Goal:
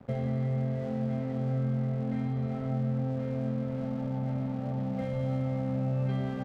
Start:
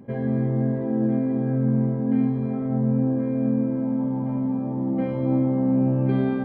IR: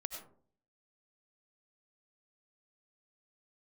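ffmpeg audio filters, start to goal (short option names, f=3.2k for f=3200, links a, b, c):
-filter_complex "[0:a]aecho=1:1:1.5:1,acrossover=split=110|850|1800[a][b][c][d];[a]acompressor=threshold=-35dB:ratio=4[e];[b]acompressor=threshold=-32dB:ratio=4[f];[c]acompressor=threshold=-52dB:ratio=4[g];[d]acompressor=threshold=-52dB:ratio=4[h];[e][f][g][h]amix=inputs=4:normalize=0,aeval=exprs='sgn(val(0))*max(abs(val(0))-0.00447,0)':c=same"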